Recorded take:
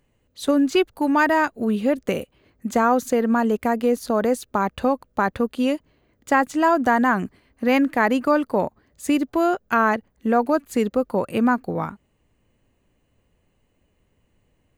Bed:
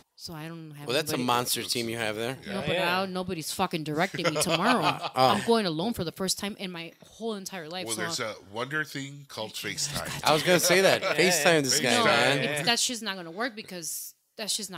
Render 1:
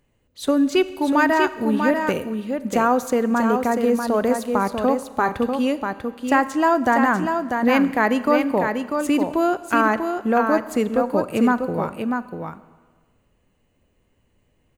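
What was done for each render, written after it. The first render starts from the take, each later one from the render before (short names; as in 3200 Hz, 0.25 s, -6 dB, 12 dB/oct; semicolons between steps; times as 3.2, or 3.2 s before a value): echo 0.643 s -5.5 dB; Schroeder reverb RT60 1.5 s, combs from 29 ms, DRR 15 dB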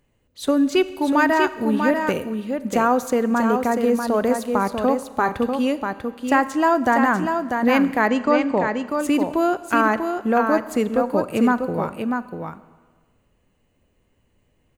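8.07–8.88 brick-wall FIR low-pass 8500 Hz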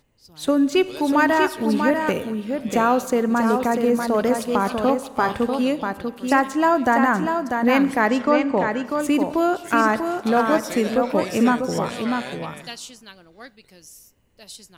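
add bed -11 dB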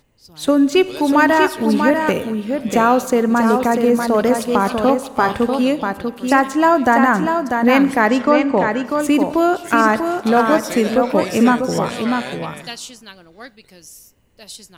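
gain +4.5 dB; limiter -2 dBFS, peak gain reduction 1.5 dB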